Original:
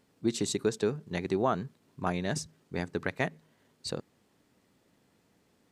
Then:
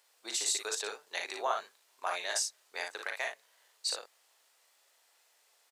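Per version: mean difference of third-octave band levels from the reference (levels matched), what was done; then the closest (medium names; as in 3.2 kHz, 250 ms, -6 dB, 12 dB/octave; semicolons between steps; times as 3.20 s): 14.5 dB: high-pass 610 Hz 24 dB/octave; treble shelf 2.7 kHz +10.5 dB; peak limiter -18.5 dBFS, peak gain reduction 6 dB; on a send: early reflections 39 ms -6 dB, 57 ms -5.5 dB; on the sum: trim -2.5 dB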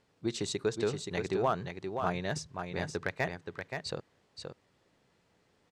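5.0 dB: Bessel low-pass 5.8 kHz, order 2; peaking EQ 240 Hz -8 dB 1 oct; hard clipper -19 dBFS, distortion -25 dB; delay 525 ms -6 dB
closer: second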